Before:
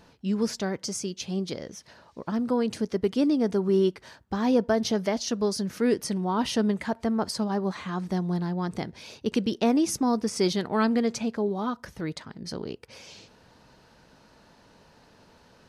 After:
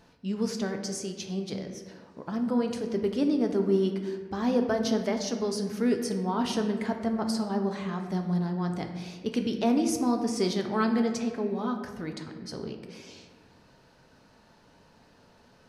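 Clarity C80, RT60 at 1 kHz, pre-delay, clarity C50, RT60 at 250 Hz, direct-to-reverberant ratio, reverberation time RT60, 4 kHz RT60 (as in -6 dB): 8.5 dB, 1.4 s, 5 ms, 7.0 dB, 2.0 s, 4.0 dB, 1.5 s, 0.85 s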